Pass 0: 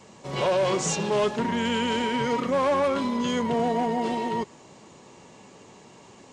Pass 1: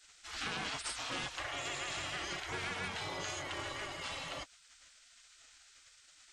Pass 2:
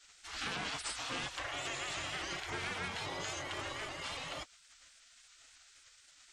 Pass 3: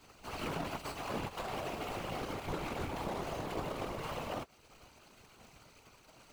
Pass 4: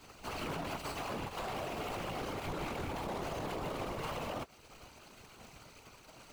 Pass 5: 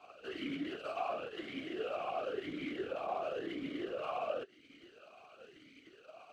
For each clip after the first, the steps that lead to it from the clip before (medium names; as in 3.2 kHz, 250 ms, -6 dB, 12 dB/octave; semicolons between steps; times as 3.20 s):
spectral gate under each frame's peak -20 dB weak; compression, threshold -35 dBFS, peak gain reduction 4 dB
vibrato with a chosen wave saw up 3.6 Hz, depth 100 cents
median filter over 25 samples; compression 2:1, threshold -56 dBFS, peak gain reduction 9 dB; whisper effect; trim +14.5 dB
peak limiter -34 dBFS, peak gain reduction 9 dB; trim +4 dB
talking filter a-i 0.96 Hz; trim +10.5 dB